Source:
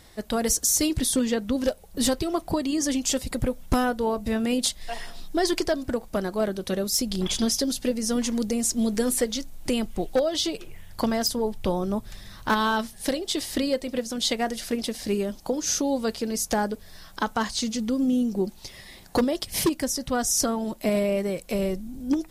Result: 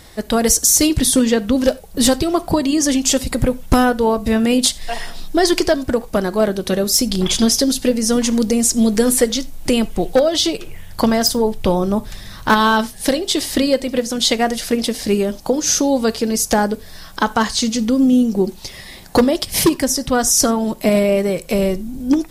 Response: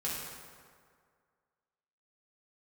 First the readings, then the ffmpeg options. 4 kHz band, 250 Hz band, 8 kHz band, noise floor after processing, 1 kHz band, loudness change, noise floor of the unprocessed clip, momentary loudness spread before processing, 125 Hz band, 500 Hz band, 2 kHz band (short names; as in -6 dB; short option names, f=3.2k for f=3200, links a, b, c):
+9.0 dB, +9.5 dB, +9.5 dB, -38 dBFS, +9.0 dB, +9.5 dB, -48 dBFS, 7 LU, +9.0 dB, +9.5 dB, +9.5 dB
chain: -filter_complex "[0:a]asplit=2[a][b];[1:a]atrim=start_sample=2205,atrim=end_sample=4410[c];[b][c]afir=irnorm=-1:irlink=0,volume=-17.5dB[d];[a][d]amix=inputs=2:normalize=0,volume=8.5dB"